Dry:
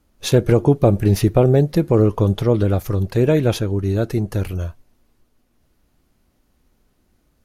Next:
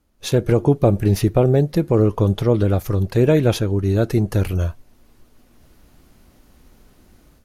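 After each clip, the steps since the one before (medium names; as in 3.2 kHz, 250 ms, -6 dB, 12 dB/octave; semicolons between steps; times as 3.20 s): level rider gain up to 15 dB; trim -3.5 dB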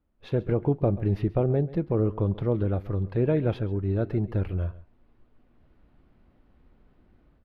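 distance through air 430 m; delay 135 ms -18 dB; trim -8 dB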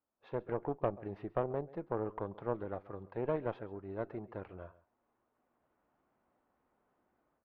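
band-pass filter 930 Hz, Q 1.2; Chebyshev shaper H 3 -19 dB, 4 -20 dB, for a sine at -17 dBFS; trim -1 dB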